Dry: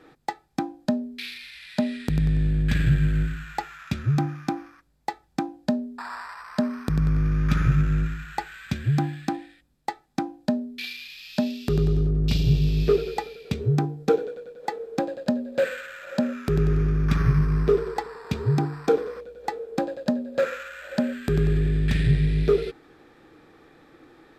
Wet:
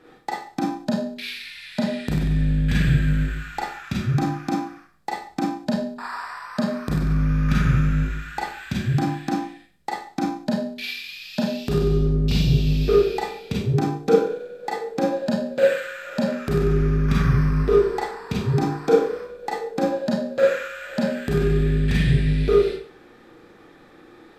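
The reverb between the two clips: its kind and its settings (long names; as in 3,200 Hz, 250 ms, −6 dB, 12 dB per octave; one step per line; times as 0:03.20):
four-comb reverb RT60 0.45 s, combs from 31 ms, DRR −3.5 dB
level −1 dB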